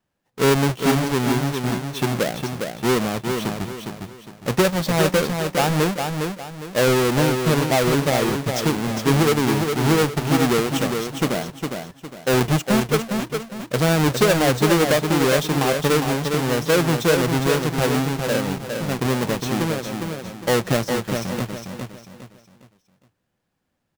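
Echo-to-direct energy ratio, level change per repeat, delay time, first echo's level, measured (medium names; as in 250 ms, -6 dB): -5.0 dB, -9.5 dB, 408 ms, -5.5 dB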